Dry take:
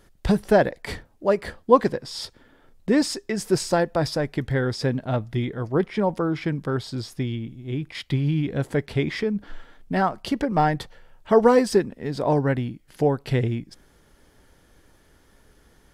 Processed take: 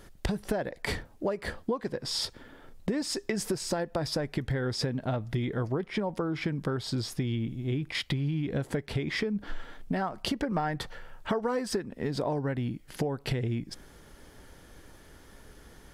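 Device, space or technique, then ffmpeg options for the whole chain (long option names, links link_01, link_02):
serial compression, peaks first: -filter_complex "[0:a]acompressor=threshold=-27dB:ratio=10,acompressor=threshold=-34dB:ratio=2,asettb=1/sr,asplit=3[link_01][link_02][link_03];[link_01]atrim=end=10.434[link_04];[link_02]atrim=start=10.43:end=11.87,asetpts=PTS-STARTPTS,afade=type=in:duration=0.004:curve=qsin,afade=type=out:start_time=1.436:duration=0.004:curve=qsin,equalizer=frequency=1400:width=1.5:gain=4.5[link_05];[link_03]atrim=start=11.866[link_06];[link_04][link_05]acrossfade=duration=0.004:curve1=hsin:curve2=qsin[link_07];[link_07][link_06]acrossfade=duration=0.004:curve1=qsin:curve2=hsin,volume=4.5dB"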